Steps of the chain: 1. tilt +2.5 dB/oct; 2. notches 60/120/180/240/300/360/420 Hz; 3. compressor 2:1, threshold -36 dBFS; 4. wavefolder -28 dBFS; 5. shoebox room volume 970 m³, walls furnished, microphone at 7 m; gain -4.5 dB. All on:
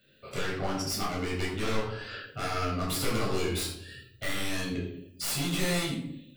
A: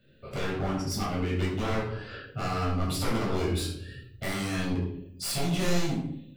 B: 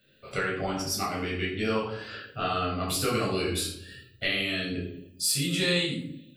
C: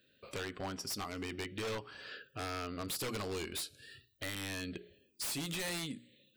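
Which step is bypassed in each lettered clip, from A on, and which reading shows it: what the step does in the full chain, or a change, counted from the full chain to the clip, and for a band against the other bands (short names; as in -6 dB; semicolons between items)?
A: 1, 125 Hz band +5.0 dB; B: 4, distortion -1 dB; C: 5, echo-to-direct 5.0 dB to none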